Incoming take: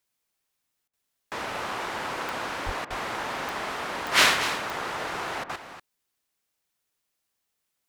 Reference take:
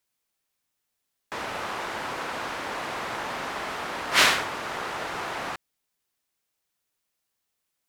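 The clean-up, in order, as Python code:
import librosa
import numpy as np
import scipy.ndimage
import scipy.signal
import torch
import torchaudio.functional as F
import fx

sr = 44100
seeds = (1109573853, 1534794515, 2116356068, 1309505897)

y = fx.fix_declick_ar(x, sr, threshold=10.0)
y = fx.highpass(y, sr, hz=140.0, slope=24, at=(2.65, 2.77), fade=0.02)
y = fx.fix_interpolate(y, sr, at_s=(0.88, 2.85, 5.44), length_ms=52.0)
y = fx.fix_echo_inverse(y, sr, delay_ms=239, level_db=-11.0)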